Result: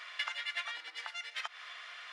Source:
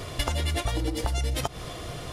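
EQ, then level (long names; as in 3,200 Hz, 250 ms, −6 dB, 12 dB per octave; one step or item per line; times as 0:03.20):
four-pole ladder high-pass 1,400 Hz, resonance 35%
head-to-tape spacing loss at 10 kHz 28 dB
+9.5 dB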